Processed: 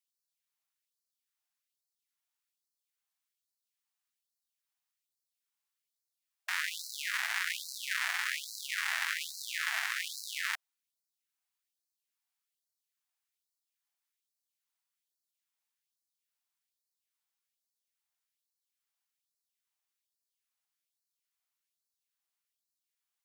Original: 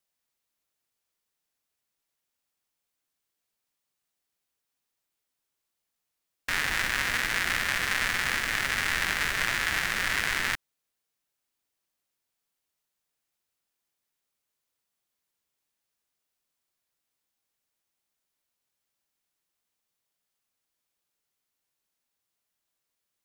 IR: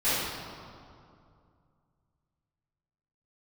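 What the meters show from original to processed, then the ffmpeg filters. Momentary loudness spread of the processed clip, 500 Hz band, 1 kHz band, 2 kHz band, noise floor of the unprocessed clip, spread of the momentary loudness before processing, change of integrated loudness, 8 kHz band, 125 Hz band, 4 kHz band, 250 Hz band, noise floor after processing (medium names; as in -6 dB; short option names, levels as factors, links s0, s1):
6 LU, -21.5 dB, -9.5 dB, -8.0 dB, -84 dBFS, 3 LU, -7.5 dB, -5.5 dB, under -40 dB, -6.5 dB, under -40 dB, under -85 dBFS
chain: -af "afftfilt=real='re*gte(b*sr/1024,620*pow(4000/620,0.5+0.5*sin(2*PI*1.2*pts/sr)))':imag='im*gte(b*sr/1024,620*pow(4000/620,0.5+0.5*sin(2*PI*1.2*pts/sr)))':win_size=1024:overlap=0.75,volume=0.531"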